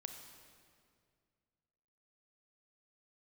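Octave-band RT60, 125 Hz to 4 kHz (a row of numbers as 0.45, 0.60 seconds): 2.8, 2.5, 2.3, 2.0, 1.9, 1.7 seconds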